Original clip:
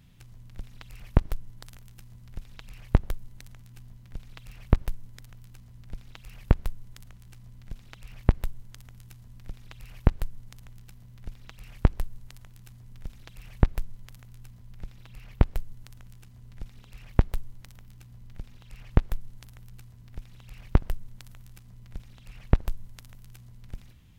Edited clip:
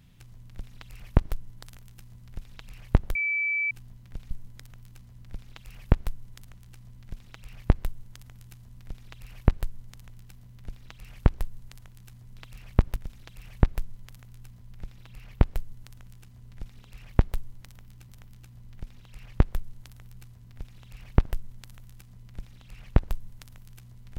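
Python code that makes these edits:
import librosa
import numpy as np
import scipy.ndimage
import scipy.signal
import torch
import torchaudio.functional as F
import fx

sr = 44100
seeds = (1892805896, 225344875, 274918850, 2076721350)

y = fx.edit(x, sr, fx.bleep(start_s=3.15, length_s=0.56, hz=2310.0, db=-24.0),
    fx.move(start_s=4.31, length_s=0.59, to_s=12.96),
    fx.repeat(start_s=17.66, length_s=0.43, count=2), tone=tone)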